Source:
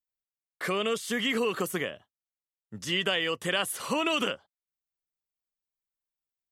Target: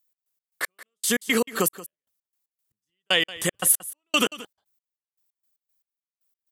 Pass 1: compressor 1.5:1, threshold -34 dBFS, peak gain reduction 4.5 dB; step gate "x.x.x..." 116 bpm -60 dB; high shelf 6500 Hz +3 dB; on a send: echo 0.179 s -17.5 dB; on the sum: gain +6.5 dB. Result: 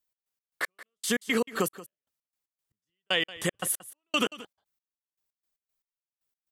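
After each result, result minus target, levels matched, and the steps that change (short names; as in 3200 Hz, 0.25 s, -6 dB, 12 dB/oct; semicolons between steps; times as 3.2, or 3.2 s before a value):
compressor: peak gain reduction +4.5 dB; 8000 Hz band -3.5 dB
remove: compressor 1.5:1, threshold -34 dBFS, peak gain reduction 4.5 dB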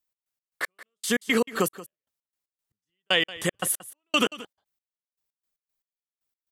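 8000 Hz band -4.5 dB
change: high shelf 6500 Hz +13.5 dB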